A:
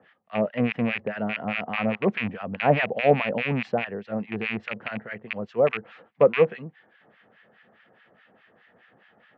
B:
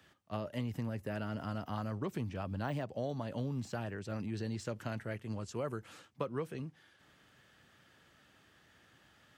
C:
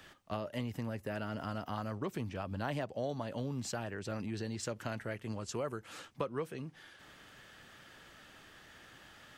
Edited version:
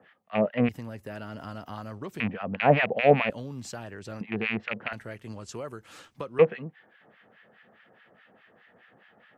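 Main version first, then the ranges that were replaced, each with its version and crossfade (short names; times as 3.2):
A
0.69–2.2 from C
3.3–4.21 from C
4.93–6.39 from C
not used: B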